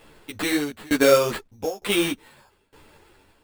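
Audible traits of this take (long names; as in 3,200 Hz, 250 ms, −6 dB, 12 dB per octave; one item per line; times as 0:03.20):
tremolo saw down 1.1 Hz, depth 95%
aliases and images of a low sample rate 6,000 Hz, jitter 0%
a shimmering, thickened sound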